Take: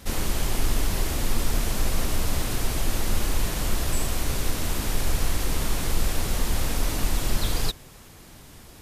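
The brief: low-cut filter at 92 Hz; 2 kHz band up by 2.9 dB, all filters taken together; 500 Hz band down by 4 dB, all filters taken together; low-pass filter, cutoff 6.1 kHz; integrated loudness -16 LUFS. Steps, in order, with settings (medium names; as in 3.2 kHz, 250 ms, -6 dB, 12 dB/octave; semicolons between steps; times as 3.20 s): high-pass 92 Hz; low-pass 6.1 kHz; peaking EQ 500 Hz -5.5 dB; peaking EQ 2 kHz +4 dB; trim +15 dB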